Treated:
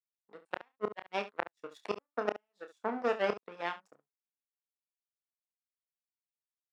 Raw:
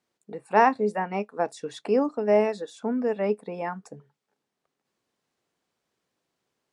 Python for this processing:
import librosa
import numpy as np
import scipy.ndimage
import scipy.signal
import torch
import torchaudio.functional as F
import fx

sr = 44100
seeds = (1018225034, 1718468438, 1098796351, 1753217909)

y = fx.gate_flip(x, sr, shuts_db=-16.0, range_db=-29)
y = fx.power_curve(y, sr, exponent=2.0)
y = fx.weighting(y, sr, curve='A')
y = fx.room_early_taps(y, sr, ms=(29, 70), db=(-8.5, -14.0))
y = y * librosa.db_to_amplitude(4.0)